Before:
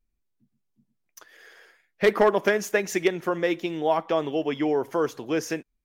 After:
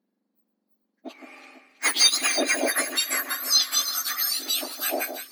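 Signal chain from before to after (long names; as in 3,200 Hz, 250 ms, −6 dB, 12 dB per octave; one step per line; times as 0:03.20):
frequency axis turned over on the octave scale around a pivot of 1,900 Hz
low-shelf EQ 350 Hz −3 dB
in parallel at −9 dB: sine wavefolder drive 5 dB, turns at −11 dBFS
on the sum: thirty-one-band graphic EQ 200 Hz +4 dB, 4,000 Hz +11 dB, 8,000 Hz −10 dB
speed change +10%
on a send: delay that swaps between a low-pass and a high-pass 165 ms, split 2,300 Hz, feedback 70%, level −8.5 dB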